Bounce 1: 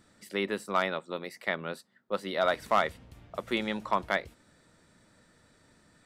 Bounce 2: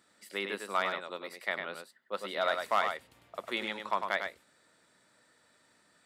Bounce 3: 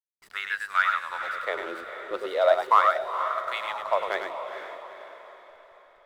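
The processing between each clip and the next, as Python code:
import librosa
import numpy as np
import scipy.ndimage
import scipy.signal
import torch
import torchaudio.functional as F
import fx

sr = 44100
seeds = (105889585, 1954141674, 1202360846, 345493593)

y1 = fx.highpass(x, sr, hz=650.0, slope=6)
y1 = fx.peak_eq(y1, sr, hz=5900.0, db=-3.5, octaves=0.24)
y1 = y1 + 10.0 ** (-6.0 / 20.0) * np.pad(y1, (int(101 * sr / 1000.0), 0))[:len(y1)]
y1 = y1 * 10.0 ** (-1.5 / 20.0)
y2 = fx.filter_lfo_highpass(y1, sr, shape='sine', hz=0.39, low_hz=310.0, high_hz=1600.0, q=6.2)
y2 = fx.backlash(y2, sr, play_db=-44.5)
y2 = fx.echo_diffused(y2, sr, ms=454, feedback_pct=47, wet_db=-8.5)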